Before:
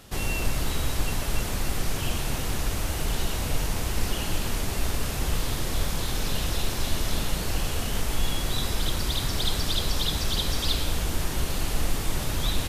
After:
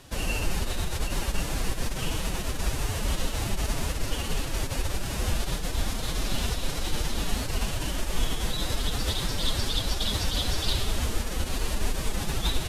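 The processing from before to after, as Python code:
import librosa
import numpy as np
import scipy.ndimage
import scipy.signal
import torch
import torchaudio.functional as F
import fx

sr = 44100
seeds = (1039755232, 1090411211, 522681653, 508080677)

y = scipy.signal.sosfilt(scipy.signal.butter(2, 12000.0, 'lowpass', fs=sr, output='sos'), x)
y = fx.pitch_keep_formants(y, sr, semitones=5.5)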